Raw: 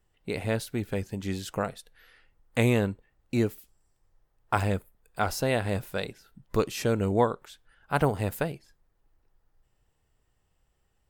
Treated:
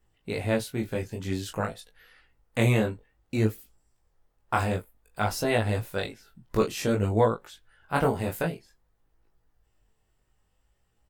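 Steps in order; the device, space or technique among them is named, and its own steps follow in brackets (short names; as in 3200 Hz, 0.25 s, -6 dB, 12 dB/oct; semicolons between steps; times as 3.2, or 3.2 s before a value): double-tracked vocal (doubler 18 ms -6.5 dB; chorus 0.54 Hz, delay 18 ms, depth 5.5 ms); gain +3 dB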